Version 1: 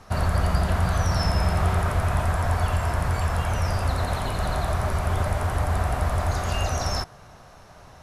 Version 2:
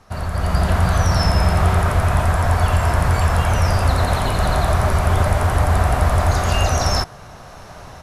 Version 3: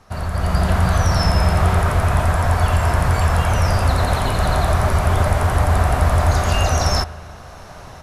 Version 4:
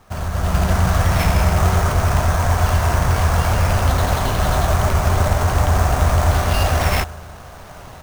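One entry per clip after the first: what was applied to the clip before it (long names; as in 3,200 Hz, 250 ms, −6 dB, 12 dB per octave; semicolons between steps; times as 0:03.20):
automatic gain control gain up to 13 dB; level −2.5 dB
spring reverb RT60 1.8 s, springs 38 ms, DRR 16.5 dB
sample-rate reduction 7,500 Hz, jitter 20%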